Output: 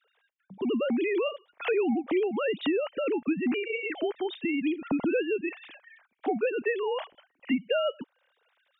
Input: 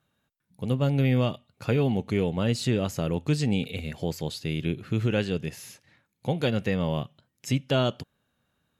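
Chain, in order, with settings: formants replaced by sine waves; compression 2.5:1, threshold -38 dBFS, peak gain reduction 13.5 dB; trim +8 dB

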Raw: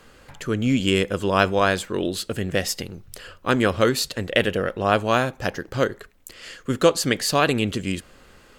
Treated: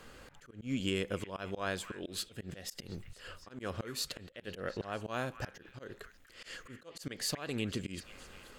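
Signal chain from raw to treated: compression 2.5:1, threshold -32 dBFS, peak gain reduction 14 dB; slow attack 213 ms; repeats whose band climbs or falls 241 ms, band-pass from 1.7 kHz, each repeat 0.7 oct, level -12 dB; slow attack 125 ms; trim -3 dB

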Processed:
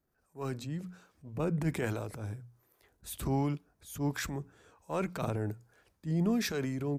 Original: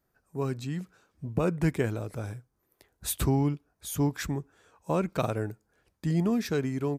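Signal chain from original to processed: harmonic tremolo 1.3 Hz, depth 50%, crossover 440 Hz; transient shaper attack -9 dB, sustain +6 dB; hum notches 60/120/180 Hz; trim -1 dB

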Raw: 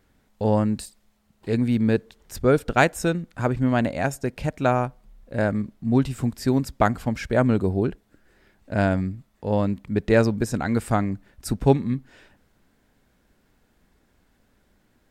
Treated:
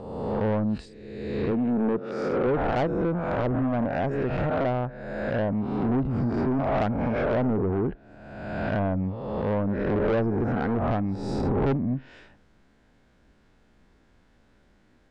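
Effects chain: reverse spectral sustain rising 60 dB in 1.28 s; low-pass that closes with the level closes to 840 Hz, closed at -15.5 dBFS; 1.51–2.47 s: Chebyshev high-pass 180 Hz, order 2; saturation -20 dBFS, distortion -8 dB; distance through air 79 m

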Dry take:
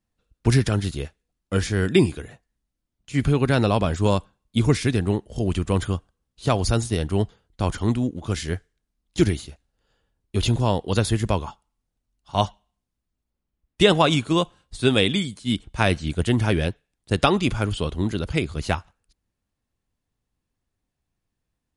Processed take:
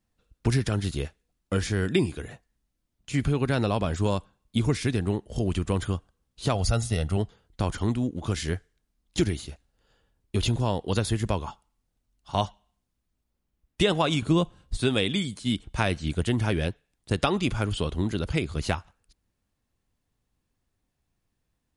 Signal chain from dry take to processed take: 6.55–7.17 s: comb 1.5 ms, depth 57%; 14.22–14.77 s: bass shelf 340 Hz +11 dB; compression 2:1, threshold -29 dBFS, peak gain reduction 10.5 dB; trim +2.5 dB

